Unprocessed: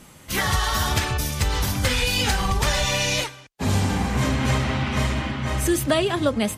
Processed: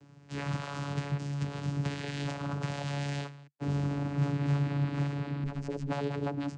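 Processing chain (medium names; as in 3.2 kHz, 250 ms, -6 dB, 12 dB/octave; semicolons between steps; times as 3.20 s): one-sided wavefolder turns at -20.5 dBFS; vocoder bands 8, saw 142 Hz; 5.44–5.90 s: AM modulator 130 Hz, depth 70%; trim -6 dB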